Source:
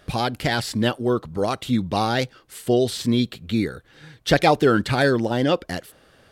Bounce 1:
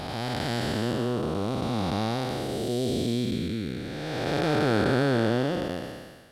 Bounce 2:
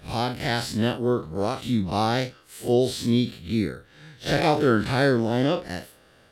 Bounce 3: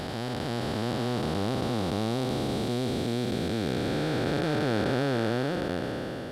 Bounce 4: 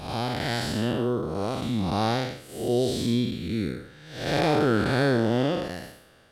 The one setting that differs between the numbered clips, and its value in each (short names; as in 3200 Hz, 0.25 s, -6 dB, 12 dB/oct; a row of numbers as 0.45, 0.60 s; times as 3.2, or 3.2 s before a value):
time blur, width: 622, 91, 1770, 236 ms